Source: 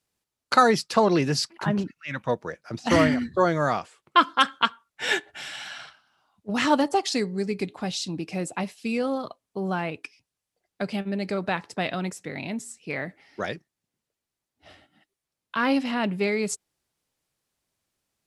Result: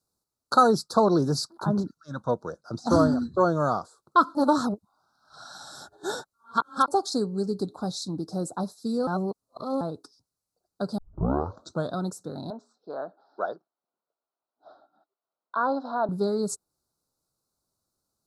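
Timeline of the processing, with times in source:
0:01.97–0:03.72: low-pass filter 10,000 Hz
0:04.35–0:06.88: reverse
0:09.07–0:09.81: reverse
0:10.98: tape start 0.95 s
0:12.50–0:16.09: loudspeaker in its box 440–3,400 Hz, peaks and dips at 680 Hz +7 dB, 980 Hz +3 dB, 1,500 Hz +4 dB, 2,100 Hz −10 dB, 3,100 Hz −4 dB
whole clip: elliptic band-stop filter 1,400–4,000 Hz, stop band 40 dB; dynamic equaliser 5,300 Hz, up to −4 dB, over −45 dBFS, Q 1.3

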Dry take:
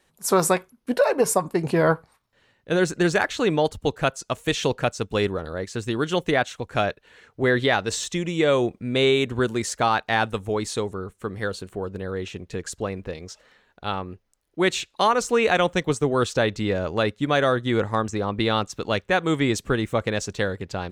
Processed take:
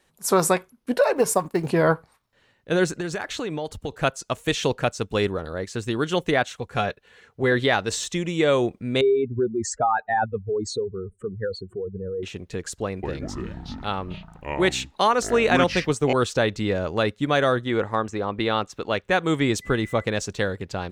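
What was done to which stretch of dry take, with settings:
0:01.16–0:01.68: mu-law and A-law mismatch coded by A
0:02.94–0:03.92: downward compressor, threshold −25 dBFS
0:06.57–0:07.52: notch comb filter 310 Hz
0:09.01–0:12.23: expanding power law on the bin magnitudes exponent 2.7
0:12.84–0:16.13: delay with pitch and tempo change per echo 188 ms, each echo −6 semitones, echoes 3
0:17.64–0:19.04: bass and treble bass −5 dB, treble −7 dB
0:19.61–0:20.03: steady tone 2,000 Hz −41 dBFS

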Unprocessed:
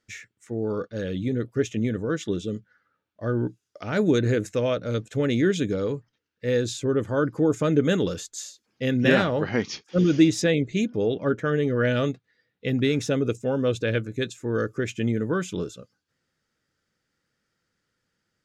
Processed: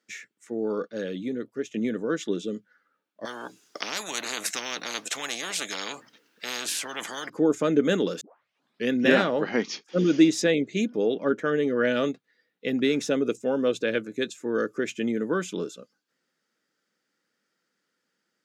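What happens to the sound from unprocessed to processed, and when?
0:00.96–0:01.74: fade out, to −9 dB
0:03.25–0:07.30: every bin compressed towards the loudest bin 10 to 1
0:08.21: tape start 0.69 s
whole clip: high-pass filter 200 Hz 24 dB per octave

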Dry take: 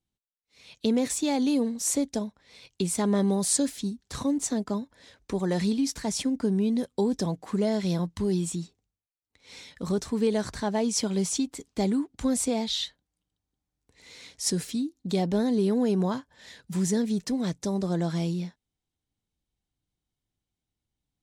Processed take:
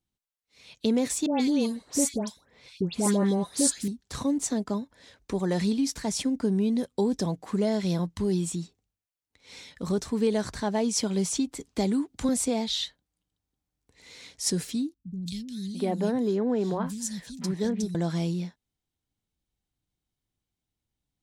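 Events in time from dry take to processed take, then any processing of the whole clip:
0:01.26–0:03.88: all-pass dispersion highs, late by 144 ms, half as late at 1,600 Hz
0:11.32–0:12.29: multiband upward and downward compressor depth 40%
0:14.94–0:17.95: three-band delay without the direct sound lows, highs, mids 170/690 ms, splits 180/2,800 Hz

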